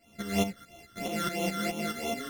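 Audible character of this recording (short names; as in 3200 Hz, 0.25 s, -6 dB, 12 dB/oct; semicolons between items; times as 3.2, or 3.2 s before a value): a buzz of ramps at a fixed pitch in blocks of 64 samples; phasing stages 12, 3 Hz, lowest notch 760–1600 Hz; tremolo saw up 4.7 Hz, depth 70%; a shimmering, thickened sound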